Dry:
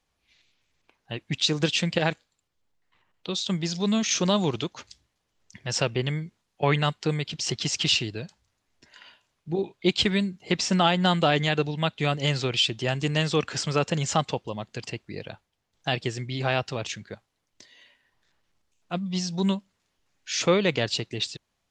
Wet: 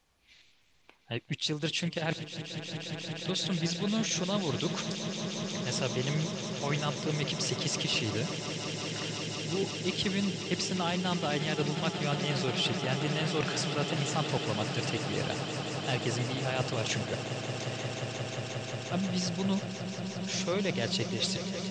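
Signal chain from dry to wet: reverse; compressor 6:1, threshold -34 dBFS, peak gain reduction 17 dB; reverse; swelling echo 0.178 s, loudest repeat 8, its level -12.5 dB; gain +4.5 dB

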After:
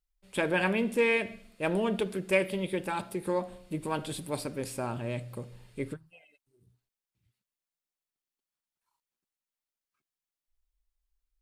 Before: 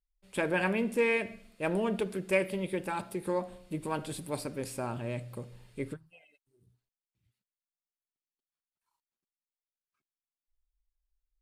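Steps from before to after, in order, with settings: dynamic EQ 3400 Hz, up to +5 dB, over -54 dBFS, Q 2.9; gain +1.5 dB

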